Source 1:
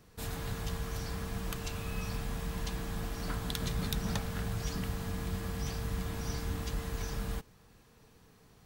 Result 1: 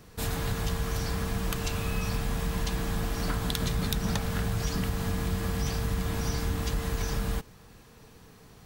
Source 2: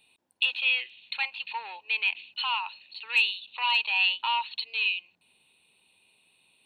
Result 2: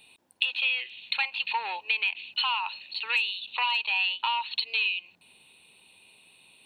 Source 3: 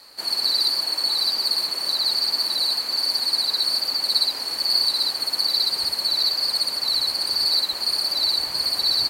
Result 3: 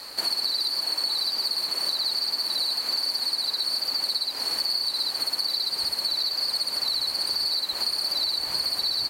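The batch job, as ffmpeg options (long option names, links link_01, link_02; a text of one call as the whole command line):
ffmpeg -i in.wav -af "acompressor=threshold=-32dB:ratio=8,volume=8dB" out.wav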